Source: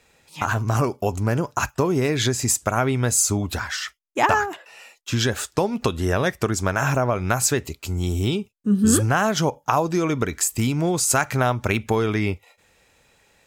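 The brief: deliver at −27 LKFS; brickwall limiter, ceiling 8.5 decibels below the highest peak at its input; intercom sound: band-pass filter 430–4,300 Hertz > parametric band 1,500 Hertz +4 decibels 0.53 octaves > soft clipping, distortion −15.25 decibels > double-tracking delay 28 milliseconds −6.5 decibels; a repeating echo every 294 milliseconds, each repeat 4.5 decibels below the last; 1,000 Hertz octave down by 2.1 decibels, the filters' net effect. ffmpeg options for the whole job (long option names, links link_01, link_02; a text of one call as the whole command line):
ffmpeg -i in.wav -filter_complex "[0:a]equalizer=frequency=1000:width_type=o:gain=-4,alimiter=limit=-13dB:level=0:latency=1,highpass=430,lowpass=4300,equalizer=frequency=1500:width_type=o:width=0.53:gain=4,aecho=1:1:294|588|882|1176|1470|1764|2058|2352|2646:0.596|0.357|0.214|0.129|0.0772|0.0463|0.0278|0.0167|0.01,asoftclip=threshold=-18dB,asplit=2[link_01][link_02];[link_02]adelay=28,volume=-6.5dB[link_03];[link_01][link_03]amix=inputs=2:normalize=0,volume=0.5dB" out.wav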